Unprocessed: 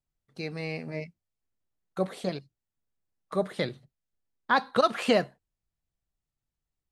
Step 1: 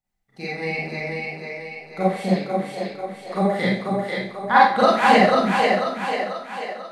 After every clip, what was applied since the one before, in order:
thirty-one-band graphic EQ 200 Hz +6 dB, 800 Hz +11 dB, 2,000 Hz +10 dB
echo with a time of its own for lows and highs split 330 Hz, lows 264 ms, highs 491 ms, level −3 dB
four-comb reverb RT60 0.46 s, combs from 31 ms, DRR −7.5 dB
level −3 dB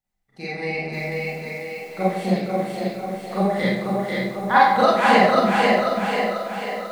feedback echo with a low-pass in the loop 103 ms, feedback 66%, low-pass 1,300 Hz, level −8 dB
feedback echo at a low word length 538 ms, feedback 35%, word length 7 bits, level −7 dB
level −1 dB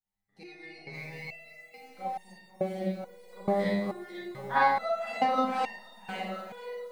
step-sequenced resonator 2.3 Hz 100–920 Hz

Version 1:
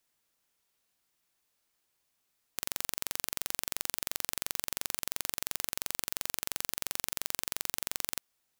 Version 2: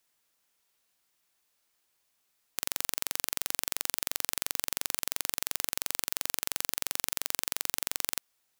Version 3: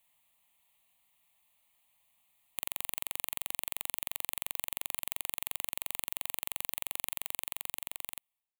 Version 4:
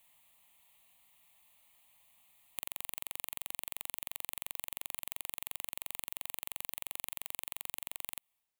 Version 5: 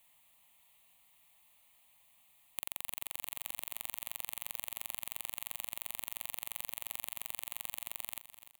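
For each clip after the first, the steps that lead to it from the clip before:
low-shelf EQ 360 Hz −5 dB; level +3 dB
fade-out on the ending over 1.49 s; downward compressor 2 to 1, threshold −36 dBFS, peak gain reduction 7 dB; phaser with its sweep stopped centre 1,500 Hz, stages 6; level +5 dB
downward compressor 10 to 1, threshold −38 dBFS, peak gain reduction 10.5 dB; level +5.5 dB
repeating echo 297 ms, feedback 45%, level −13.5 dB

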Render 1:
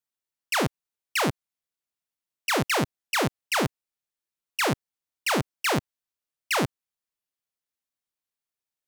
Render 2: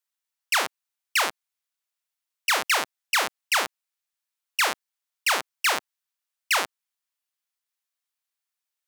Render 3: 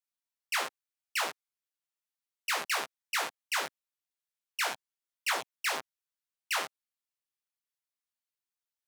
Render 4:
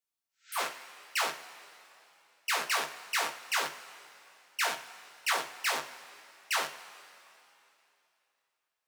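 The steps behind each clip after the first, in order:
high-pass filter 870 Hz 12 dB per octave; level +4 dB
multi-voice chorus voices 4, 0.71 Hz, delay 16 ms, depth 3.9 ms; level −5.5 dB
coupled-rooms reverb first 0.32 s, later 3 s, from −17 dB, DRR 4.5 dB; healed spectral selection 0:00.31–0:00.57, 1,300–8,100 Hz both

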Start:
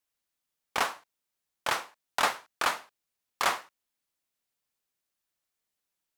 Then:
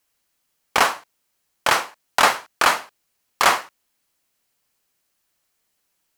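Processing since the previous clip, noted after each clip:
notch filter 3,600 Hz, Q 20
in parallel at −0.5 dB: brickwall limiter −19.5 dBFS, peak gain reduction 7.5 dB
on the sum: level +7 dB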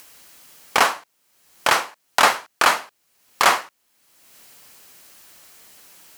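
low-shelf EQ 78 Hz −9 dB
in parallel at −2 dB: upward compression, threshold −18 dBFS
on the sum: level −4.5 dB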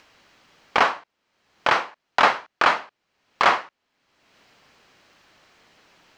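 high-frequency loss of the air 200 metres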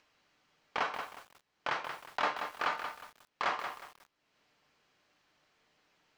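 tuned comb filter 150 Hz, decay 0.3 s, harmonics all, mix 60%
feedback echo at a low word length 181 ms, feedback 35%, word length 7 bits, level −7 dB
level −9 dB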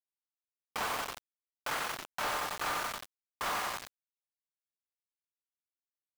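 on a send: single-tap delay 95 ms −5 dB
on the sum: log-companded quantiser 2 bits
level −6.5 dB

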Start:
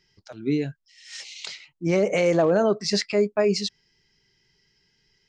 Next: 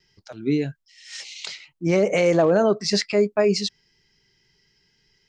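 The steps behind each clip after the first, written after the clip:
noise gate with hold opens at −60 dBFS
level +2 dB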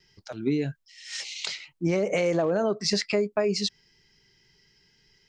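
downward compressor 6 to 1, threshold −23 dBFS, peak gain reduction 9 dB
level +1.5 dB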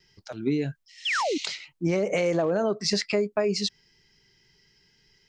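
sound drawn into the spectrogram fall, 0:01.05–0:01.38, 260–3,600 Hz −26 dBFS

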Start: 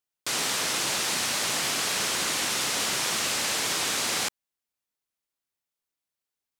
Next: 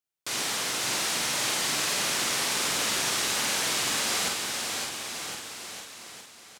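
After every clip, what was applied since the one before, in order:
double-tracking delay 47 ms −3 dB
bouncing-ball delay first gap 560 ms, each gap 0.9×, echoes 5
level −4 dB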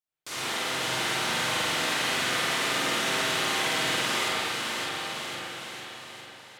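spring reverb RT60 2.1 s, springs 39/53 ms, chirp 20 ms, DRR −9.5 dB
level −6.5 dB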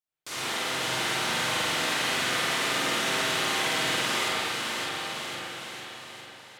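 no processing that can be heard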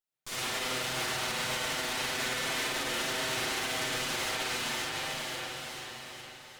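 lower of the sound and its delayed copy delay 7.9 ms
brickwall limiter −23.5 dBFS, peak gain reduction 6.5 dB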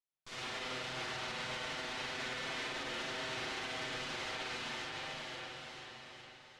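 low-pass filter 4,900 Hz 12 dB per octave
level −7 dB

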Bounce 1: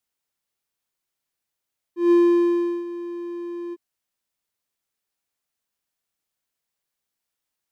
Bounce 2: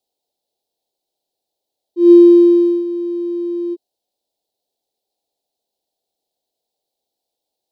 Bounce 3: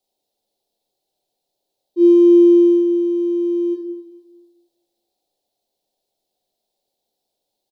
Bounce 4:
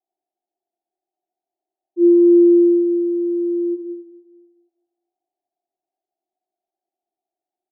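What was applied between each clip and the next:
drawn EQ curve 160 Hz 0 dB, 420 Hz +14 dB, 800 Hz +15 dB, 1,200 Hz −19 dB, 2,100 Hz −11 dB, 4,000 Hz +10 dB, 6,100 Hz +1 dB; level −1 dB
downward compressor 2.5 to 1, threshold −11 dBFS, peak gain reduction 5.5 dB; repeating echo 220 ms, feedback 42%, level −18 dB; rectangular room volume 250 cubic metres, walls mixed, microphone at 1 metre
pair of resonant band-passes 500 Hz, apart 1 octave; level −1 dB

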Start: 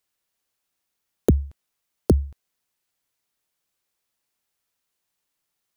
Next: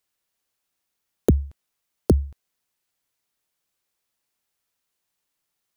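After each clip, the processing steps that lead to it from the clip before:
no processing that can be heard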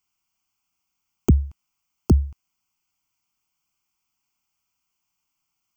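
phaser with its sweep stopped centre 2,600 Hz, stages 8
level +3.5 dB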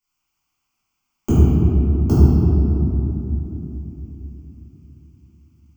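convolution reverb RT60 3.4 s, pre-delay 3 ms, DRR −14.5 dB
level −7.5 dB

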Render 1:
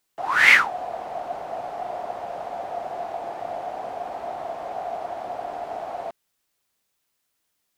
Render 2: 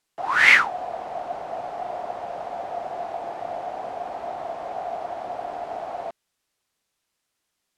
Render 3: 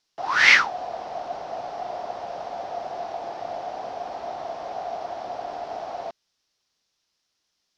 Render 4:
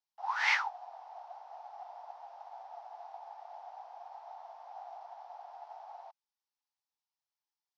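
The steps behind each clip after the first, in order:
Bessel low-pass filter 9,500 Hz, order 2
drawn EQ curve 2,300 Hz 0 dB, 5,600 Hz +10 dB, 8,100 Hz −8 dB; level −1 dB
four-pole ladder high-pass 800 Hz, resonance 75%; expander for the loud parts 1.5 to 1, over −39 dBFS; level −3 dB

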